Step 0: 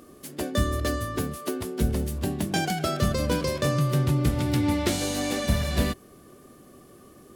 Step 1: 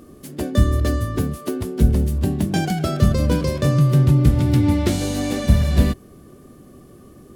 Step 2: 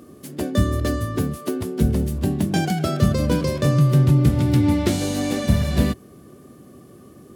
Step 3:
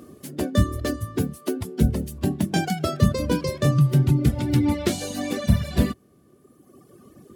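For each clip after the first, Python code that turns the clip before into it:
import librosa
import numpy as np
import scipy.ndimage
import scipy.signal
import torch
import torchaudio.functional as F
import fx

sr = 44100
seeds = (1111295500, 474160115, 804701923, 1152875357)

y1 = fx.low_shelf(x, sr, hz=320.0, db=11.0)
y2 = scipy.signal.sosfilt(scipy.signal.butter(2, 89.0, 'highpass', fs=sr, output='sos'), y1)
y3 = fx.dereverb_blind(y2, sr, rt60_s=1.8)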